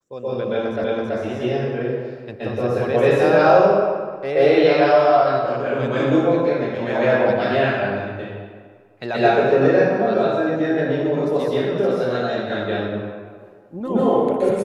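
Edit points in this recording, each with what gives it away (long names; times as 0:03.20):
0:00.84: the same again, the last 0.33 s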